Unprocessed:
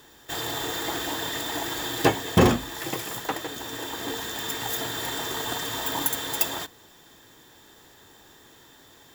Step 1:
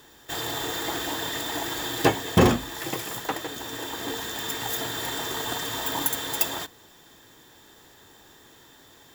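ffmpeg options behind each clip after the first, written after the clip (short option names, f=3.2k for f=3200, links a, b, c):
-af anull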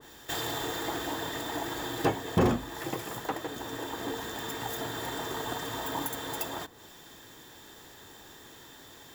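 -filter_complex "[0:a]asplit=2[a][b];[b]acompressor=threshold=-37dB:ratio=6,volume=1dB[c];[a][c]amix=inputs=2:normalize=0,asoftclip=type=tanh:threshold=-11dB,adynamicequalizer=threshold=0.00708:dfrequency=1700:dqfactor=0.7:tfrequency=1700:tqfactor=0.7:attack=5:release=100:ratio=0.375:range=3.5:mode=cutabove:tftype=highshelf,volume=-4.5dB"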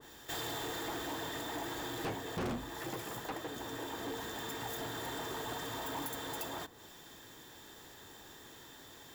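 -af "asoftclip=type=tanh:threshold=-31dB,volume=-3dB"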